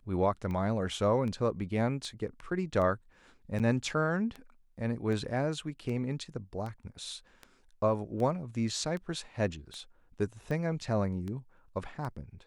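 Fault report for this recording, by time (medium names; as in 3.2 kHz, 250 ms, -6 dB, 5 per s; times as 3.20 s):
tick 78 rpm -27 dBFS
3.59–3.60 s: dropout 7.3 ms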